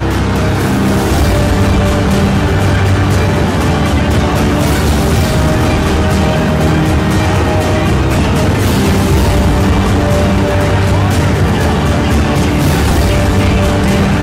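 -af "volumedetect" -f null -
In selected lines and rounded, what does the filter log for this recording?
mean_volume: -10.4 dB
max_volume: -4.3 dB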